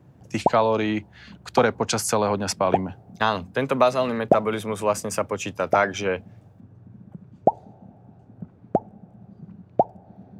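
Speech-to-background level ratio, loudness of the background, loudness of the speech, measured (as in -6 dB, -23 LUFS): 2.5 dB, -26.5 LUFS, -24.0 LUFS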